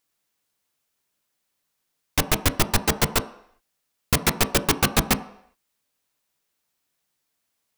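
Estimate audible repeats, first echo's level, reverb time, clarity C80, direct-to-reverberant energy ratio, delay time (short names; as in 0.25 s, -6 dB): none, none, 0.70 s, 17.5 dB, 10.5 dB, none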